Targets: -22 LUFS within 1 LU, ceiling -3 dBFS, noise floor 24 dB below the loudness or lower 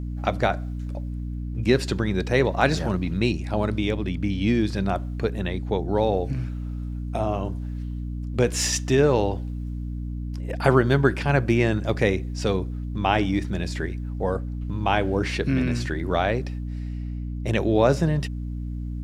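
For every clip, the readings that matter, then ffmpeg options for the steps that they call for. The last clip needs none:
hum 60 Hz; harmonics up to 300 Hz; hum level -28 dBFS; loudness -25.0 LUFS; peak -3.5 dBFS; loudness target -22.0 LUFS
-> -af "bandreject=f=60:t=h:w=6,bandreject=f=120:t=h:w=6,bandreject=f=180:t=h:w=6,bandreject=f=240:t=h:w=6,bandreject=f=300:t=h:w=6"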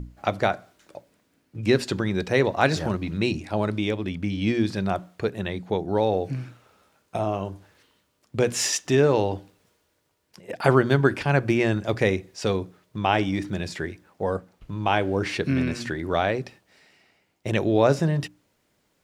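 hum none; loudness -25.0 LUFS; peak -3.0 dBFS; loudness target -22.0 LUFS
-> -af "volume=3dB,alimiter=limit=-3dB:level=0:latency=1"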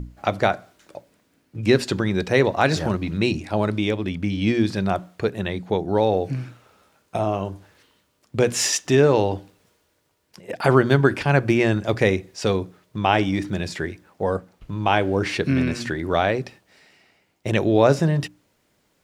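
loudness -22.0 LUFS; peak -3.0 dBFS; noise floor -67 dBFS

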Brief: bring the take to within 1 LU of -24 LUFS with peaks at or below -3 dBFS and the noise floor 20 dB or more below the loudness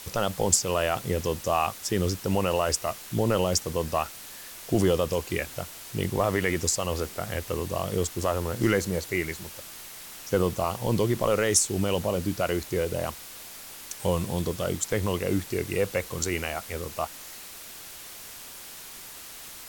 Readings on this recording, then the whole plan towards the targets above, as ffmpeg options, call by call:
noise floor -43 dBFS; noise floor target -48 dBFS; loudness -27.5 LUFS; peak -7.0 dBFS; loudness target -24.0 LUFS
-> -af "afftdn=nr=6:nf=-43"
-af "volume=3.5dB"

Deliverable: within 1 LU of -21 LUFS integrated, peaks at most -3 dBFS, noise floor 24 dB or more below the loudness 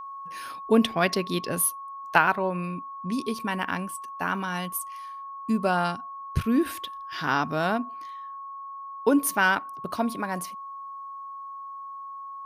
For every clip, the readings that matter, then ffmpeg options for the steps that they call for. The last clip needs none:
steady tone 1100 Hz; tone level -36 dBFS; loudness -27.0 LUFS; peak -4.5 dBFS; loudness target -21.0 LUFS
-> -af "bandreject=f=1.1k:w=30"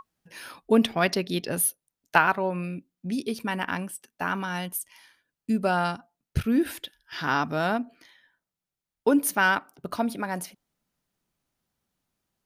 steady tone none; loudness -26.5 LUFS; peak -4.5 dBFS; loudness target -21.0 LUFS
-> -af "volume=5.5dB,alimiter=limit=-3dB:level=0:latency=1"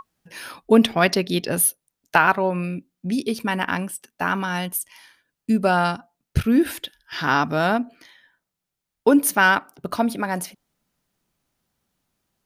loudness -21.5 LUFS; peak -3.0 dBFS; noise floor -83 dBFS

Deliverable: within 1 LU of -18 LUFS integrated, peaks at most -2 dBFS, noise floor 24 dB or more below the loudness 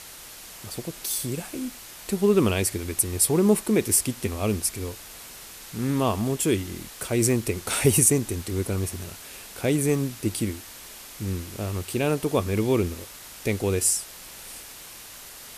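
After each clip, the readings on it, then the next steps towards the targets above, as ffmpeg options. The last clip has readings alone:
noise floor -43 dBFS; noise floor target -49 dBFS; loudness -24.5 LUFS; peak -4.0 dBFS; loudness target -18.0 LUFS
-> -af "afftdn=nr=6:nf=-43"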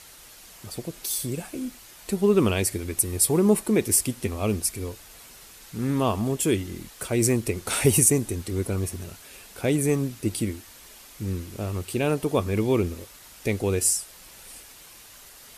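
noise floor -48 dBFS; noise floor target -49 dBFS
-> -af "afftdn=nr=6:nf=-48"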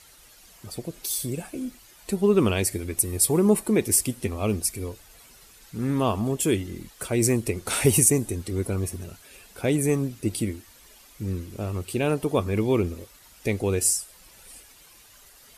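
noise floor -53 dBFS; loudness -24.5 LUFS; peak -4.0 dBFS; loudness target -18.0 LUFS
-> -af "volume=6.5dB,alimiter=limit=-2dB:level=0:latency=1"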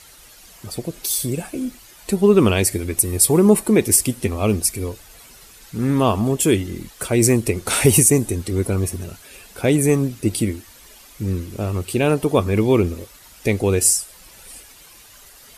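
loudness -18.5 LUFS; peak -2.0 dBFS; noise floor -46 dBFS

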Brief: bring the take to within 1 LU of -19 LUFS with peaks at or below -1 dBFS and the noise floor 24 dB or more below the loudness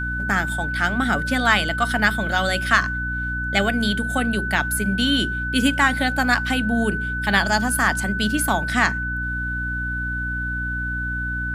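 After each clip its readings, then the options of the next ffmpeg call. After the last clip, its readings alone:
hum 60 Hz; harmonics up to 300 Hz; hum level -27 dBFS; steady tone 1500 Hz; tone level -25 dBFS; loudness -21.0 LUFS; peak -1.5 dBFS; loudness target -19.0 LUFS
-> -af "bandreject=f=60:t=h:w=4,bandreject=f=120:t=h:w=4,bandreject=f=180:t=h:w=4,bandreject=f=240:t=h:w=4,bandreject=f=300:t=h:w=4"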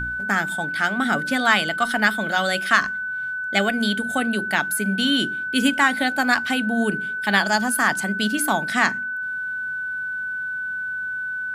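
hum none; steady tone 1500 Hz; tone level -25 dBFS
-> -af "bandreject=f=1.5k:w=30"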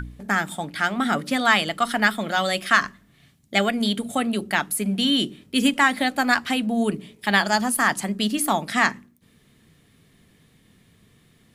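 steady tone none; loudness -22.0 LUFS; peak -2.5 dBFS; loudness target -19.0 LUFS
-> -af "volume=3dB,alimiter=limit=-1dB:level=0:latency=1"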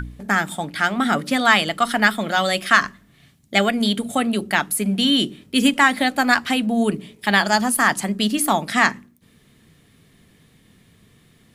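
loudness -19.0 LUFS; peak -1.0 dBFS; noise floor -56 dBFS

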